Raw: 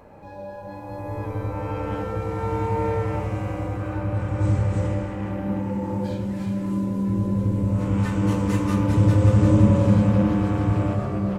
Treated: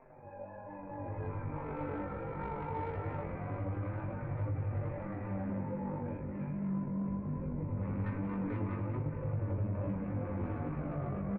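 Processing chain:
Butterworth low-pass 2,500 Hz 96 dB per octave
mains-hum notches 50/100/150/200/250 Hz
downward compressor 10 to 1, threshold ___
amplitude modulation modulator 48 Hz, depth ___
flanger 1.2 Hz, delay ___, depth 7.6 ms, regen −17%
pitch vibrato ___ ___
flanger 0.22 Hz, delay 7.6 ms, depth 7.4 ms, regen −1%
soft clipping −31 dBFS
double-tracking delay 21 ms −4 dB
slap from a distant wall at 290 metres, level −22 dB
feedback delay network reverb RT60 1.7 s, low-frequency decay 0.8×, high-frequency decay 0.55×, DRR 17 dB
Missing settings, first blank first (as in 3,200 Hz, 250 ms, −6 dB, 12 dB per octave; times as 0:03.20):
−21 dBFS, 85%, 4.2 ms, 4.6 Hz, 26 cents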